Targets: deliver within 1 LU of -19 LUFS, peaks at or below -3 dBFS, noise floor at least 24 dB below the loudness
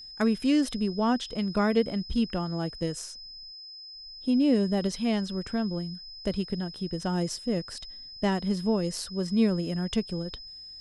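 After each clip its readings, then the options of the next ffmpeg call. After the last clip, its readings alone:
steady tone 5100 Hz; tone level -42 dBFS; loudness -28.5 LUFS; peak -13.0 dBFS; loudness target -19.0 LUFS
-> -af "bandreject=f=5.1k:w=30"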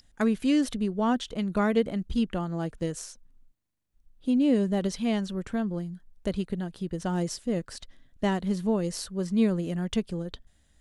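steady tone none; loudness -28.5 LUFS; peak -13.0 dBFS; loudness target -19.0 LUFS
-> -af "volume=9.5dB"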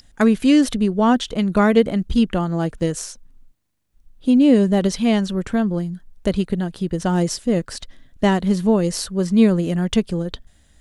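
loudness -19.0 LUFS; peak -3.5 dBFS; noise floor -56 dBFS

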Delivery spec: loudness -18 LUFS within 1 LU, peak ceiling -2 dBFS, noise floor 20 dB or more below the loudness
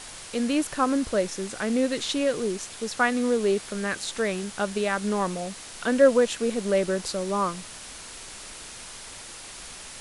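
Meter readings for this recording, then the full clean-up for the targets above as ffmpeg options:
noise floor -42 dBFS; noise floor target -46 dBFS; loudness -26.0 LUFS; peak -7.0 dBFS; loudness target -18.0 LUFS
-> -af "afftdn=nr=6:nf=-42"
-af "volume=8dB,alimiter=limit=-2dB:level=0:latency=1"

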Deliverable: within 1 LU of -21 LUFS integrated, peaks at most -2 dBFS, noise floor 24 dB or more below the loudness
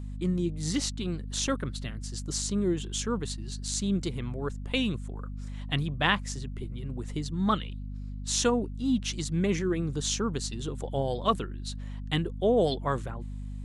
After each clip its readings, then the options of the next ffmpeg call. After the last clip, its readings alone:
hum 50 Hz; harmonics up to 250 Hz; hum level -34 dBFS; loudness -30.5 LUFS; peak -9.5 dBFS; loudness target -21.0 LUFS
-> -af "bandreject=f=50:t=h:w=4,bandreject=f=100:t=h:w=4,bandreject=f=150:t=h:w=4,bandreject=f=200:t=h:w=4,bandreject=f=250:t=h:w=4"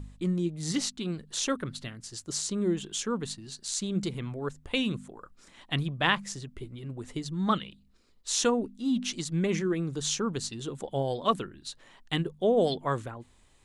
hum none; loudness -30.5 LUFS; peak -9.5 dBFS; loudness target -21.0 LUFS
-> -af "volume=9.5dB,alimiter=limit=-2dB:level=0:latency=1"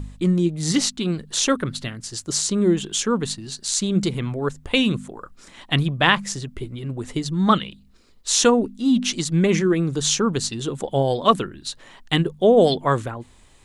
loudness -21.0 LUFS; peak -2.0 dBFS; noise floor -51 dBFS

